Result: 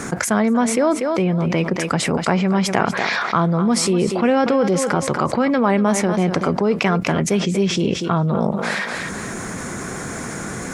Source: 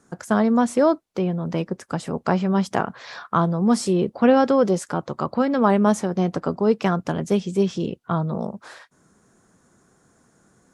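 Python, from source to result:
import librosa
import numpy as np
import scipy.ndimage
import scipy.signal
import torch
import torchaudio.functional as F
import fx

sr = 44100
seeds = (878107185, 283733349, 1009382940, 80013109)

p1 = fx.peak_eq(x, sr, hz=2200.0, db=10.0, octaves=0.52)
p2 = p1 + fx.echo_thinned(p1, sr, ms=240, feedback_pct=21, hz=260.0, wet_db=-13, dry=0)
p3 = fx.env_flatten(p2, sr, amount_pct=70)
y = p3 * librosa.db_to_amplitude(-2.5)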